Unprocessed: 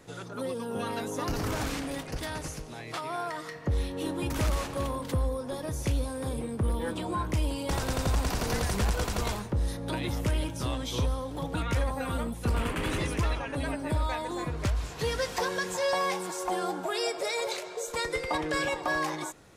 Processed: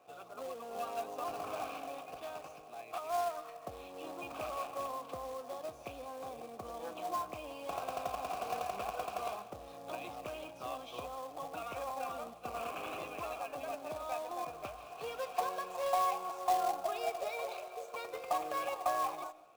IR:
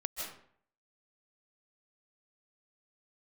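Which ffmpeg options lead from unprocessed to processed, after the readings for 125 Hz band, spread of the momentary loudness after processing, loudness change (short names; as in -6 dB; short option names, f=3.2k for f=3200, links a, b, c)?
-27.5 dB, 11 LU, -8.0 dB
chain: -filter_complex "[0:a]asplit=3[a][b][c];[a]bandpass=f=730:t=q:w=8,volume=0dB[d];[b]bandpass=f=1.09k:t=q:w=8,volume=-6dB[e];[c]bandpass=f=2.44k:t=q:w=8,volume=-9dB[f];[d][e][f]amix=inputs=3:normalize=0,acrusher=bits=3:mode=log:mix=0:aa=0.000001,asplit=2[g][h];[1:a]atrim=start_sample=2205[i];[h][i]afir=irnorm=-1:irlink=0,volume=-17dB[j];[g][j]amix=inputs=2:normalize=0,volume=3dB"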